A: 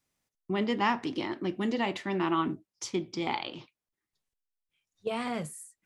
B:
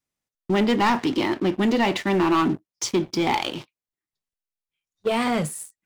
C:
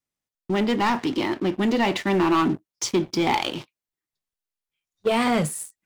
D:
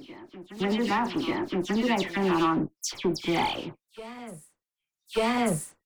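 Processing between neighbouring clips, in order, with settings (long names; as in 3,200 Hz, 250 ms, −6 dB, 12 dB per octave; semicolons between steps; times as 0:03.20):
leveller curve on the samples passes 3
speech leveller within 4 dB 2 s
harmonic generator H 2 −13 dB, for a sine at −12.5 dBFS; all-pass dispersion lows, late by 110 ms, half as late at 2,800 Hz; backwards echo 1,188 ms −16 dB; level −4.5 dB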